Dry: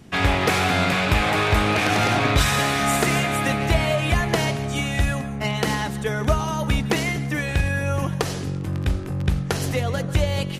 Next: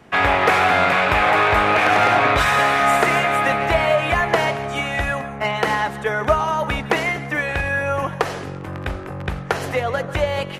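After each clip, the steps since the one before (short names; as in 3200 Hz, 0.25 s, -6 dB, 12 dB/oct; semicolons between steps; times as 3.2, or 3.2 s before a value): three-band isolator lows -14 dB, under 460 Hz, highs -14 dB, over 2400 Hz; gain +8 dB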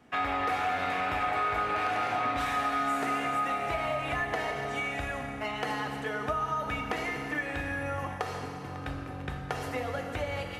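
resonator 250 Hz, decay 0.22 s, harmonics odd, mix 80%; FDN reverb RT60 2.9 s, high-frequency decay 0.9×, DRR 3.5 dB; compressor 2.5:1, threshold -29 dBFS, peak gain reduction 7 dB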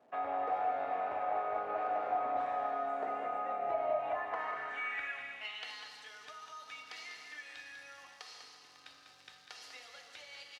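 crackle 570/s -45 dBFS; band-pass sweep 630 Hz -> 4700 Hz, 3.89–5.88; echo 0.197 s -8 dB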